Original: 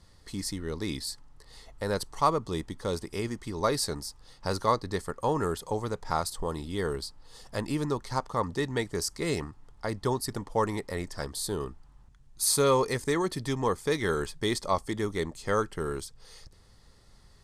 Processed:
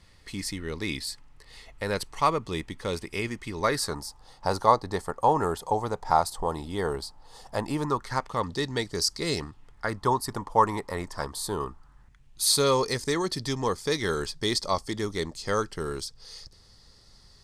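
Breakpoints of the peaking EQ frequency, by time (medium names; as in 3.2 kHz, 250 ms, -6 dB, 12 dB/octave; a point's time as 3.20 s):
peaking EQ +10.5 dB 0.83 oct
3.60 s 2.4 kHz
4.03 s 800 Hz
7.77 s 800 Hz
8.59 s 4.6 kHz
9.40 s 4.6 kHz
10.04 s 1 kHz
11.68 s 1 kHz
12.67 s 4.9 kHz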